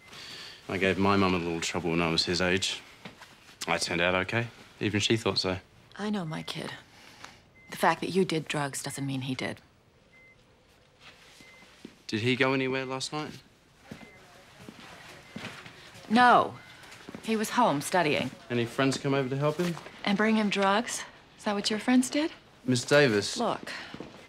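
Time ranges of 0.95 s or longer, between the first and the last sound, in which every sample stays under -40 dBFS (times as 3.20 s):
9.57–11.06 s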